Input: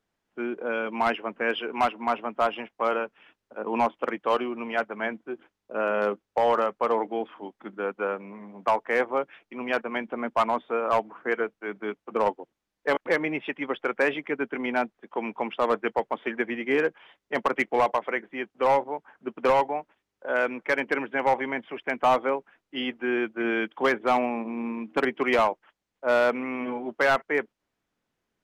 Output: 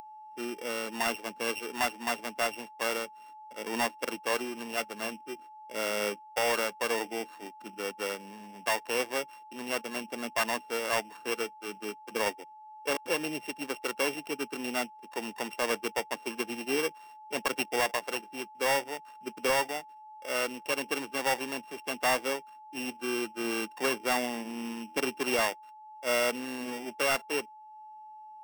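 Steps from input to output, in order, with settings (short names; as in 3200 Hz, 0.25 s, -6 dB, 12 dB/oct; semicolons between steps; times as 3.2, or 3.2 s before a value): sample sorter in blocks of 16 samples; whine 860 Hz -42 dBFS; upward compressor, threshold -39 dBFS; gain -6 dB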